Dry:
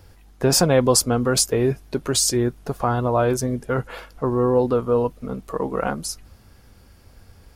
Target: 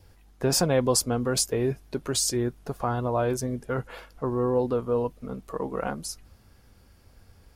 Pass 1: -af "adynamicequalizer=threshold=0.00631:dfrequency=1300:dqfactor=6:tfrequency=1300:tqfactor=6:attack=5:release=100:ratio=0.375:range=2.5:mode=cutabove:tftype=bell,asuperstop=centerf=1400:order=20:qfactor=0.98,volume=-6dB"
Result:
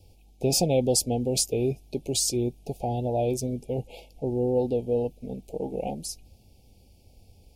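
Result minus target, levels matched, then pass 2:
1,000 Hz band −3.5 dB
-af "adynamicequalizer=threshold=0.00631:dfrequency=1300:dqfactor=6:tfrequency=1300:tqfactor=6:attack=5:release=100:ratio=0.375:range=2.5:mode=cutabove:tftype=bell,volume=-6dB"

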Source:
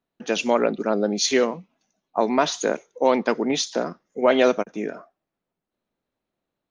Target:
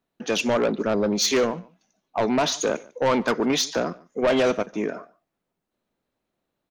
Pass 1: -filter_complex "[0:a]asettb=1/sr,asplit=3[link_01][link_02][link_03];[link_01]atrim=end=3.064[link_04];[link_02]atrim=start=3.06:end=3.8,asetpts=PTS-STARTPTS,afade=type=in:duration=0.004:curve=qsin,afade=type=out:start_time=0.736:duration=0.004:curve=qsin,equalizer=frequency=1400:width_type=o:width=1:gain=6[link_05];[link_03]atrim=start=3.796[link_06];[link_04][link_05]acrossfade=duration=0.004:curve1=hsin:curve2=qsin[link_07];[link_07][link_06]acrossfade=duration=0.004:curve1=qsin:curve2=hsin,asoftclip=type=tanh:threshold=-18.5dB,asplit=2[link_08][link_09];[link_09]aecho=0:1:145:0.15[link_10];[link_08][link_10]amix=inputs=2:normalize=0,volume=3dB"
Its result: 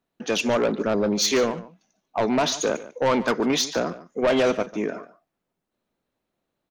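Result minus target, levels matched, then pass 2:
echo-to-direct +7 dB
-filter_complex "[0:a]asettb=1/sr,asplit=3[link_01][link_02][link_03];[link_01]atrim=end=3.064[link_04];[link_02]atrim=start=3.06:end=3.8,asetpts=PTS-STARTPTS,afade=type=in:duration=0.004:curve=qsin,afade=type=out:start_time=0.736:duration=0.004:curve=qsin,equalizer=frequency=1400:width_type=o:width=1:gain=6[link_05];[link_03]atrim=start=3.796[link_06];[link_04][link_05]acrossfade=duration=0.004:curve1=hsin:curve2=qsin[link_07];[link_07][link_06]acrossfade=duration=0.004:curve1=qsin:curve2=hsin,asoftclip=type=tanh:threshold=-18.5dB,asplit=2[link_08][link_09];[link_09]aecho=0:1:145:0.0668[link_10];[link_08][link_10]amix=inputs=2:normalize=0,volume=3dB"

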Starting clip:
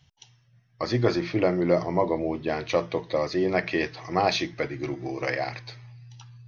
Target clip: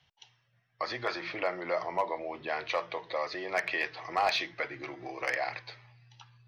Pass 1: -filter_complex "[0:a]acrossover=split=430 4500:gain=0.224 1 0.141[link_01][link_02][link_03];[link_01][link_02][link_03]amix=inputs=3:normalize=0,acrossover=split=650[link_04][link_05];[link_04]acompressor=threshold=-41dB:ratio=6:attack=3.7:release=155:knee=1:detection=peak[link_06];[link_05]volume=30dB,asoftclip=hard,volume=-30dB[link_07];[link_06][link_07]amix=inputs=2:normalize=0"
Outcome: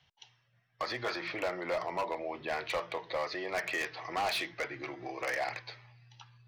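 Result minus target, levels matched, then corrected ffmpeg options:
gain into a clipping stage and back: distortion +12 dB
-filter_complex "[0:a]acrossover=split=430 4500:gain=0.224 1 0.141[link_01][link_02][link_03];[link_01][link_02][link_03]amix=inputs=3:normalize=0,acrossover=split=650[link_04][link_05];[link_04]acompressor=threshold=-41dB:ratio=6:attack=3.7:release=155:knee=1:detection=peak[link_06];[link_05]volume=20.5dB,asoftclip=hard,volume=-20.5dB[link_07];[link_06][link_07]amix=inputs=2:normalize=0"

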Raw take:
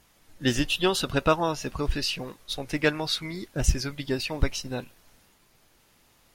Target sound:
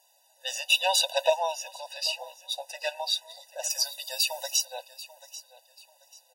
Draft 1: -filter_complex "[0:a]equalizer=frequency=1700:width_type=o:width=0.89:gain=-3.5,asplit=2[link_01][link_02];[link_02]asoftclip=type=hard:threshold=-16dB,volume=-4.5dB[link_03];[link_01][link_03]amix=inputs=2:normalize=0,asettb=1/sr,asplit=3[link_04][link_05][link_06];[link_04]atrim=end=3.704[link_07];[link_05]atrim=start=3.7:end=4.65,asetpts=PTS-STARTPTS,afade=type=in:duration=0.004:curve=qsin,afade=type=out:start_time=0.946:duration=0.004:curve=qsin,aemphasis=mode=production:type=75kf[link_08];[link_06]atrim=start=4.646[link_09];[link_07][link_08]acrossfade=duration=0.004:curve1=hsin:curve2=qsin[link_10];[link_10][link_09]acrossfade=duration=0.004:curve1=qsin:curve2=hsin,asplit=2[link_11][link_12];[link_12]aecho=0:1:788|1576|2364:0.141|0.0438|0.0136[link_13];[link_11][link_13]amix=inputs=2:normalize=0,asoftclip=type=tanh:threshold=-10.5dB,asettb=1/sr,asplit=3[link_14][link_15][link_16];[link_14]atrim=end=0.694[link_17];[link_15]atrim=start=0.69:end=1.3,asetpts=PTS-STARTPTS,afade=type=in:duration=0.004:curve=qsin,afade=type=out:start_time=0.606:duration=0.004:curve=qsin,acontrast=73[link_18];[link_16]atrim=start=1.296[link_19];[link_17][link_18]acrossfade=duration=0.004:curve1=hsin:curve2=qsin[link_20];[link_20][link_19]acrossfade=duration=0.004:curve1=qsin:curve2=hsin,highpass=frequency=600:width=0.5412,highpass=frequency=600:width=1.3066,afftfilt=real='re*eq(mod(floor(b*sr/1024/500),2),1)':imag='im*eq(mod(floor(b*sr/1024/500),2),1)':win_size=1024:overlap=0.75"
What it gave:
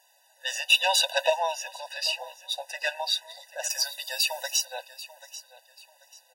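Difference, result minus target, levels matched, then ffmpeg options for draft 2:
soft clipping: distortion +15 dB; 2,000 Hz band +3.0 dB
-filter_complex "[0:a]equalizer=frequency=1700:width_type=o:width=0.89:gain=-15,asplit=2[link_01][link_02];[link_02]asoftclip=type=hard:threshold=-16dB,volume=-4.5dB[link_03];[link_01][link_03]amix=inputs=2:normalize=0,asettb=1/sr,asplit=3[link_04][link_05][link_06];[link_04]atrim=end=3.704[link_07];[link_05]atrim=start=3.7:end=4.65,asetpts=PTS-STARTPTS,afade=type=in:duration=0.004:curve=qsin,afade=type=out:start_time=0.946:duration=0.004:curve=qsin,aemphasis=mode=production:type=75kf[link_08];[link_06]atrim=start=4.646[link_09];[link_07][link_08]acrossfade=duration=0.004:curve1=hsin:curve2=qsin[link_10];[link_10][link_09]acrossfade=duration=0.004:curve1=qsin:curve2=hsin,asplit=2[link_11][link_12];[link_12]aecho=0:1:788|1576|2364:0.141|0.0438|0.0136[link_13];[link_11][link_13]amix=inputs=2:normalize=0,asoftclip=type=tanh:threshold=-1.5dB,asettb=1/sr,asplit=3[link_14][link_15][link_16];[link_14]atrim=end=0.694[link_17];[link_15]atrim=start=0.69:end=1.3,asetpts=PTS-STARTPTS,afade=type=in:duration=0.004:curve=qsin,afade=type=out:start_time=0.606:duration=0.004:curve=qsin,acontrast=73[link_18];[link_16]atrim=start=1.296[link_19];[link_17][link_18]acrossfade=duration=0.004:curve1=hsin:curve2=qsin[link_20];[link_20][link_19]acrossfade=duration=0.004:curve1=qsin:curve2=hsin,highpass=frequency=600:width=0.5412,highpass=frequency=600:width=1.3066,afftfilt=real='re*eq(mod(floor(b*sr/1024/500),2),1)':imag='im*eq(mod(floor(b*sr/1024/500),2),1)':win_size=1024:overlap=0.75"

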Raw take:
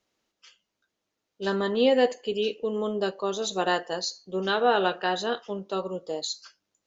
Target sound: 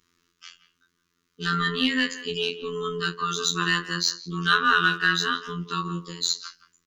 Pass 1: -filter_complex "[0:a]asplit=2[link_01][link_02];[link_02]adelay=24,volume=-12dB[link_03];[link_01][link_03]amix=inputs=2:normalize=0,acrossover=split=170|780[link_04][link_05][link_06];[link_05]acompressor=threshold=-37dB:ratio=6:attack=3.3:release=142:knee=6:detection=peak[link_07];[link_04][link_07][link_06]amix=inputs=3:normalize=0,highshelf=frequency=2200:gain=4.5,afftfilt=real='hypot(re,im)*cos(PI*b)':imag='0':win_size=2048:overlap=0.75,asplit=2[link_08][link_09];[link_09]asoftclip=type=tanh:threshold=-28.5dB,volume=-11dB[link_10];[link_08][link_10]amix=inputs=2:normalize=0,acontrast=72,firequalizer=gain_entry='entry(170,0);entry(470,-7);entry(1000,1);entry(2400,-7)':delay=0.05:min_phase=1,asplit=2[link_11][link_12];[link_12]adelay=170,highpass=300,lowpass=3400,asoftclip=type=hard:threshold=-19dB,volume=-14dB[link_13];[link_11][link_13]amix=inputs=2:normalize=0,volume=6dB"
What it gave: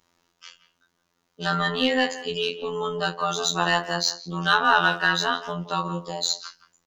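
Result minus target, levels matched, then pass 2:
500 Hz band +4.5 dB
-filter_complex "[0:a]asplit=2[link_01][link_02];[link_02]adelay=24,volume=-12dB[link_03];[link_01][link_03]amix=inputs=2:normalize=0,acrossover=split=170|780[link_04][link_05][link_06];[link_05]acompressor=threshold=-37dB:ratio=6:attack=3.3:release=142:knee=6:detection=peak[link_07];[link_04][link_07][link_06]amix=inputs=3:normalize=0,asuperstop=centerf=690:order=8:qfactor=1.1,highshelf=frequency=2200:gain=4.5,afftfilt=real='hypot(re,im)*cos(PI*b)':imag='0':win_size=2048:overlap=0.75,asplit=2[link_08][link_09];[link_09]asoftclip=type=tanh:threshold=-28.5dB,volume=-11dB[link_10];[link_08][link_10]amix=inputs=2:normalize=0,acontrast=72,firequalizer=gain_entry='entry(170,0);entry(470,-7);entry(1000,1);entry(2400,-7)':delay=0.05:min_phase=1,asplit=2[link_11][link_12];[link_12]adelay=170,highpass=300,lowpass=3400,asoftclip=type=hard:threshold=-19dB,volume=-14dB[link_13];[link_11][link_13]amix=inputs=2:normalize=0,volume=6dB"

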